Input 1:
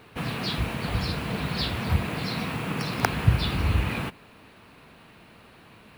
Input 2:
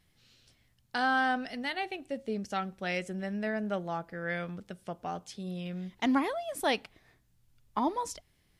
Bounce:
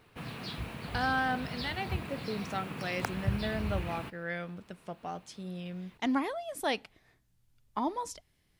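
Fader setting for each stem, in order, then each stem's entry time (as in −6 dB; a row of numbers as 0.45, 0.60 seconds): −11.0, −2.5 decibels; 0.00, 0.00 seconds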